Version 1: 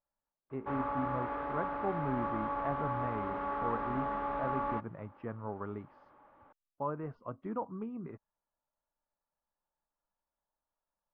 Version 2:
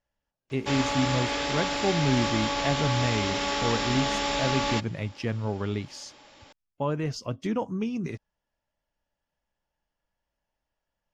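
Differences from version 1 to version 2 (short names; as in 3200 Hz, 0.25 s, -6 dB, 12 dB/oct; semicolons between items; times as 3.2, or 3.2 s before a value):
speech: add bell 76 Hz +6.5 dB 2 oct; master: remove ladder low-pass 1400 Hz, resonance 50%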